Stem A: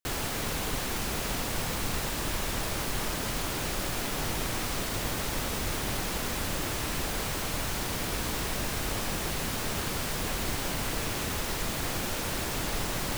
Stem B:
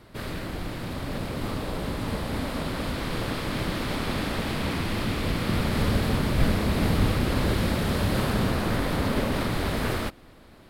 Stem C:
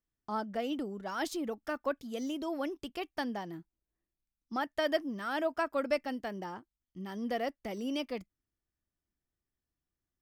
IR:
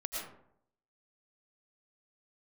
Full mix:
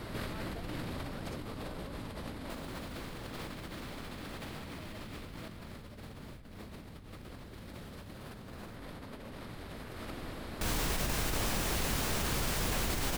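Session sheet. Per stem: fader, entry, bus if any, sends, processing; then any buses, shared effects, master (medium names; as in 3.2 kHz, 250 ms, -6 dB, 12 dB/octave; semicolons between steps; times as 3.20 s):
-10.0 dB, 2.45 s, muted 8.76–10.61 s, no send, octave divider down 2 oct, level 0 dB
0.0 dB, 0.00 s, no send, none
-8.0 dB, 0.00 s, no send, none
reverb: none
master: compressor with a negative ratio -40 dBFS, ratio -1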